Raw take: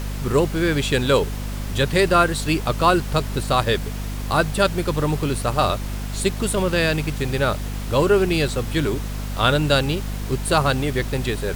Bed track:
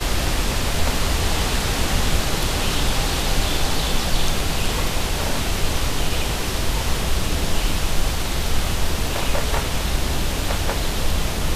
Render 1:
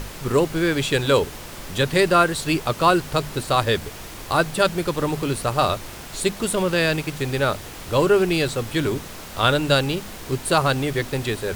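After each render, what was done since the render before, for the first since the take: hum notches 50/100/150/200/250 Hz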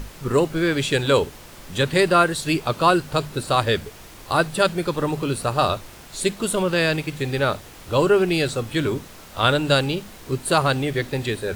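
noise print and reduce 6 dB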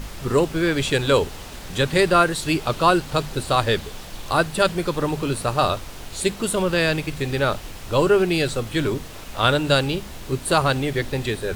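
add bed track -17 dB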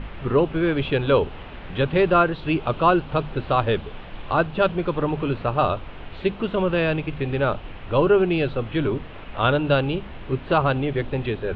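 steep low-pass 3.1 kHz 36 dB/octave; dynamic bell 1.9 kHz, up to -7 dB, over -40 dBFS, Q 2.4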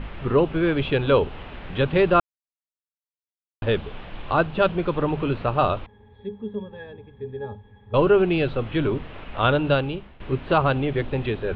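2.20–3.62 s: mute; 5.86–7.94 s: pitch-class resonator G#, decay 0.14 s; 9.67–10.20 s: fade out, to -16.5 dB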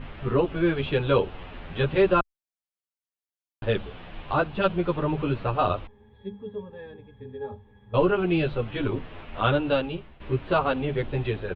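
endless flanger 9.4 ms -1.2 Hz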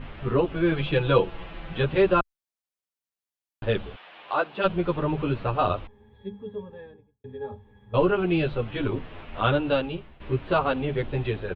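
0.71–1.78 s: comb 6 ms, depth 64%; 3.95–4.63 s: high-pass 930 Hz -> 290 Hz; 6.66–7.24 s: studio fade out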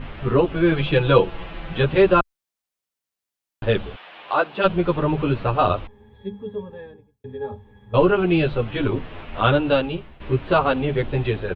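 trim +5 dB

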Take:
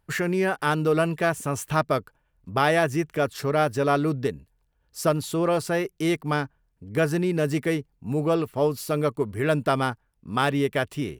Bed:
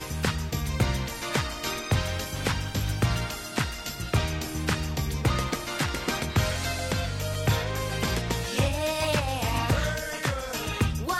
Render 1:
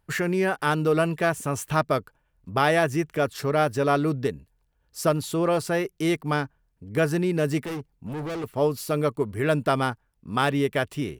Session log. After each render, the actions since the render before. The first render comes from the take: 7.65–8.44 s: overload inside the chain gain 29.5 dB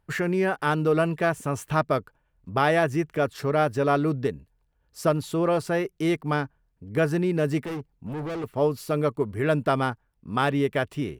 treble shelf 3.7 kHz -7 dB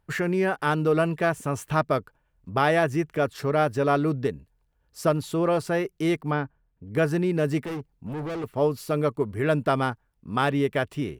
6.31–6.92 s: distance through air 240 m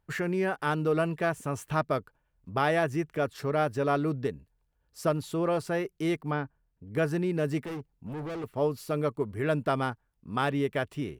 trim -4.5 dB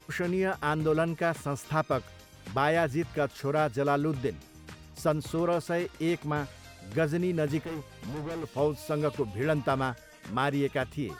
add bed -20 dB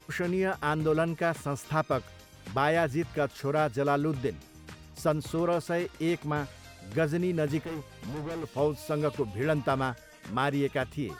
no audible change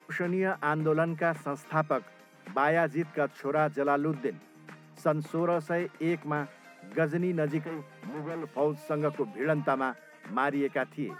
Chebyshev high-pass 150 Hz, order 8; resonant high shelf 2.7 kHz -7.5 dB, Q 1.5

